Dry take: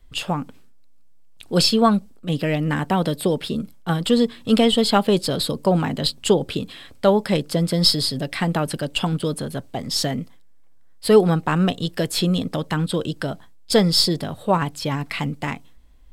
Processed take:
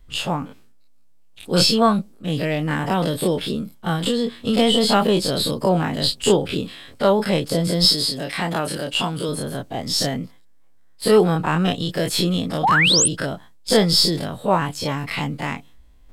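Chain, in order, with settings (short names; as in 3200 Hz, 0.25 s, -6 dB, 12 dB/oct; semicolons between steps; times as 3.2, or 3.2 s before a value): spectral dilation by 60 ms; 4–4.58 compressor, threshold -14 dBFS, peak gain reduction 5 dB; 7.85–9.29 low shelf 130 Hz -11.5 dB; 12.63–13.08 painted sound rise 690–10000 Hz -13 dBFS; gain -3 dB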